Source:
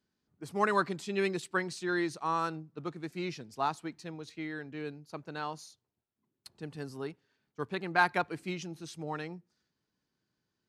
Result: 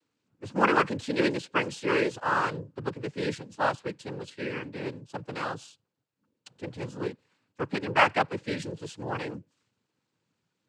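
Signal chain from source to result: median filter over 5 samples; noise vocoder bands 8; gain +5.5 dB

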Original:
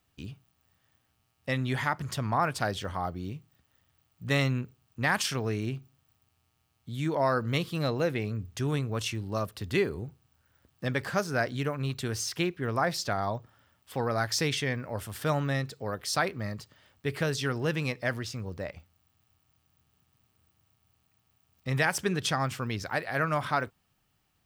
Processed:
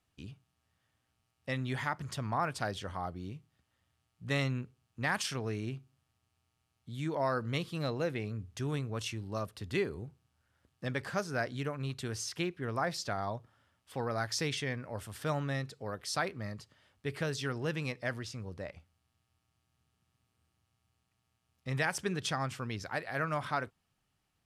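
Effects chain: LPF 12000 Hz 24 dB/oct; gain -5.5 dB

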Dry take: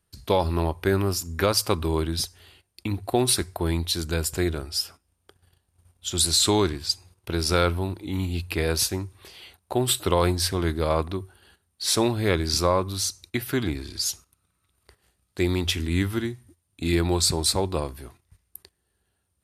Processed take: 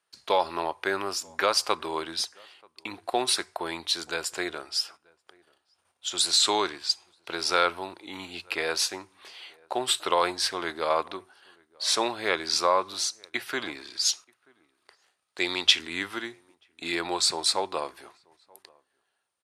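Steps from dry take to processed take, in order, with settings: outdoor echo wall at 160 m, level -28 dB; 14.04–15.79 dynamic EQ 4000 Hz, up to +8 dB, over -42 dBFS, Q 0.83; BPF 790–8000 Hz; tilt -1.5 dB/oct; gain +3.5 dB

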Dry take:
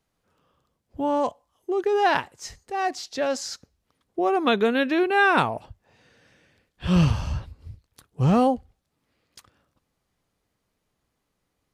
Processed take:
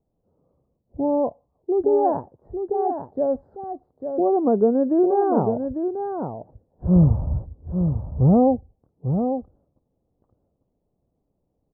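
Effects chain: inverse Chebyshev low-pass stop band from 2400 Hz, stop band 60 dB; echo 0.848 s -7 dB; gain +4 dB

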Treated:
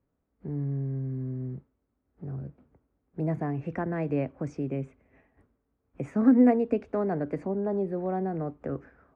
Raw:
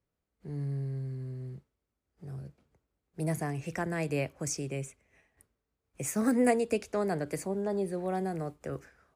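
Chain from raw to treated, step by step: in parallel at +1 dB: compressor, threshold -42 dBFS, peak gain reduction 19.5 dB; on the sum: LPF 1400 Hz 12 dB/oct; bell 260 Hz +8.5 dB 0.34 oct

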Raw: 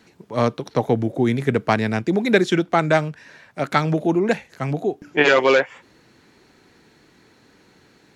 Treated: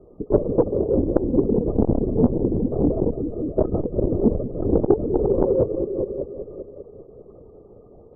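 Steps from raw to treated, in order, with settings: gate -42 dBFS, range -18 dB; tilt -3 dB/oct; crackle 280/s -32 dBFS; level quantiser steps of 14 dB; limiter -9.5 dBFS, peak gain reduction 7 dB; negative-ratio compressor -25 dBFS, ratio -0.5; brick-wall FIR band-pass 160–1300 Hz; resonant low shelf 670 Hz +12 dB, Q 3; on a send: multi-head echo 0.197 s, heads all three, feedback 42%, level -13 dB; on the sum: LPC vocoder at 8 kHz whisper; core saturation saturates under 310 Hz; gain -3 dB

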